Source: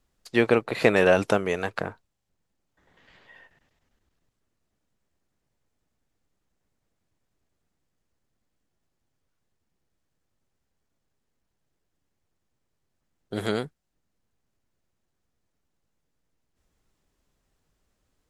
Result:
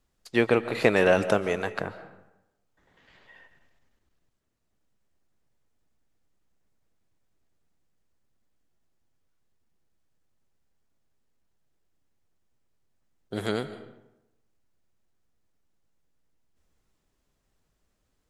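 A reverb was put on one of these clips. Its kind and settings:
comb and all-pass reverb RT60 0.93 s, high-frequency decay 0.65×, pre-delay 100 ms, DRR 13 dB
level −1.5 dB

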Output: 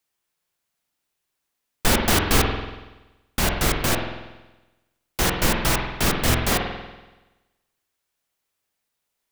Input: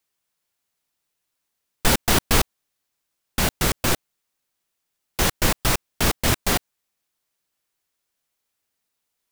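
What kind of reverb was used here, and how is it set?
spring reverb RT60 1.1 s, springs 47 ms, chirp 70 ms, DRR 2 dB
level −1 dB

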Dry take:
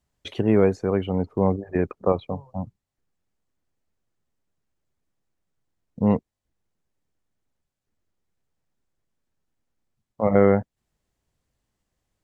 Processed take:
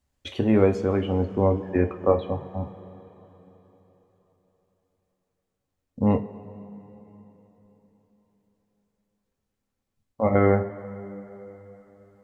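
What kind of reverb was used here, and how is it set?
coupled-rooms reverb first 0.25 s, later 4 s, from −20 dB, DRR 4 dB
level −1 dB

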